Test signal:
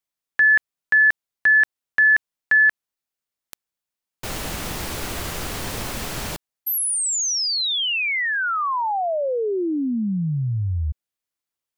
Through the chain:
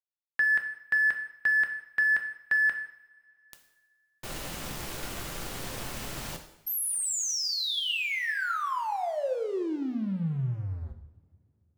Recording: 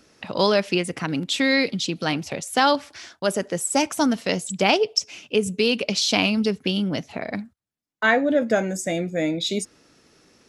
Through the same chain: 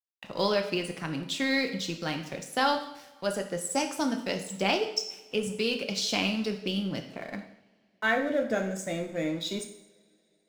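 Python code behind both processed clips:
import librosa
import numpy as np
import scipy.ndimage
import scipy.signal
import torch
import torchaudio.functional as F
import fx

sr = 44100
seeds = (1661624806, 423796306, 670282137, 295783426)

y = np.sign(x) * np.maximum(np.abs(x) - 10.0 ** (-41.0 / 20.0), 0.0)
y = fx.rev_double_slope(y, sr, seeds[0], early_s=0.69, late_s=3.3, knee_db=-25, drr_db=4.5)
y = y * librosa.db_to_amplitude(-8.0)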